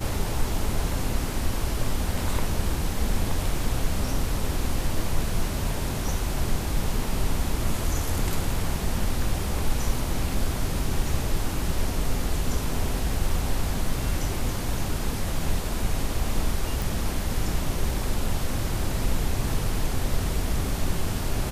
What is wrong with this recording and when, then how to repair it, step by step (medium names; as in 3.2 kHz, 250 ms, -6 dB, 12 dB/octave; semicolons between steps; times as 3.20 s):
16.82 s: pop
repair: de-click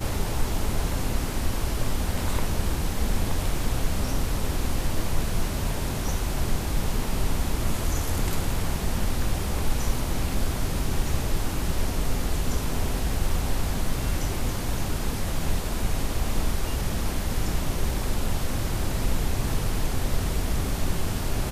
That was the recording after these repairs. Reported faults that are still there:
nothing left